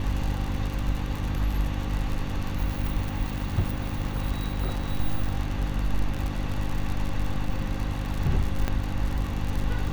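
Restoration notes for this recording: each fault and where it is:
crackle 70/s -28 dBFS
hum 50 Hz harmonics 6 -31 dBFS
8.68 pop -13 dBFS

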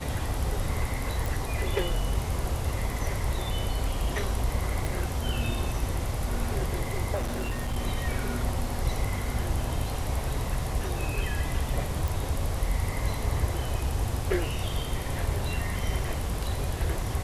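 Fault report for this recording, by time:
1.26 pop
4.85 pop
7.14–7.77 clipped -25.5 dBFS
12.08 pop

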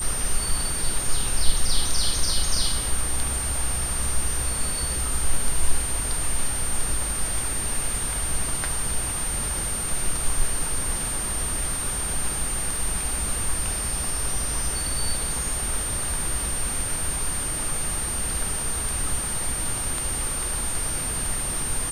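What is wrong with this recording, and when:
crackle 14/s -32 dBFS
tone 8800 Hz -27 dBFS

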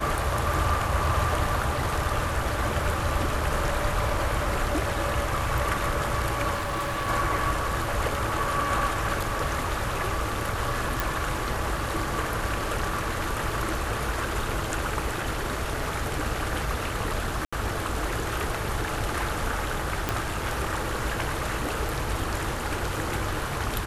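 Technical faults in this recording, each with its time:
6.54–7.09 clipped -25.5 dBFS
11 pop
17.45–17.52 gap 75 ms
20.09 pop

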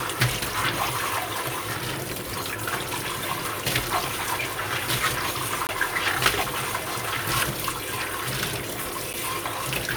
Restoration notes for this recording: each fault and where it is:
5.67–5.69 gap 19 ms
9.13–9.14 gap 8.4 ms

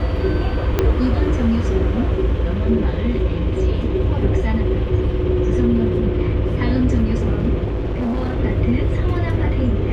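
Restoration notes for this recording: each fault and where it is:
0.79 pop -4 dBFS
7.64–8.4 clipped -18 dBFS

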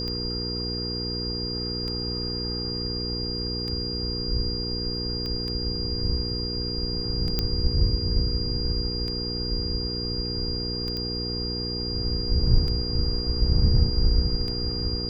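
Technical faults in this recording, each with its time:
hum 60 Hz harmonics 8 -32 dBFS
tick 33 1/3 rpm -21 dBFS
tone 4800 Hz -30 dBFS
5.26 pop -21 dBFS
7.39 pop -10 dBFS
10.97 pop -19 dBFS

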